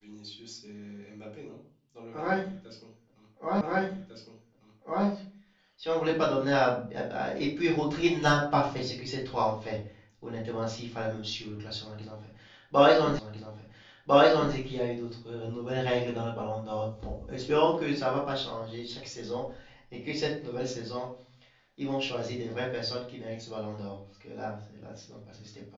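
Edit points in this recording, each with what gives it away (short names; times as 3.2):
3.61 repeat of the last 1.45 s
13.19 repeat of the last 1.35 s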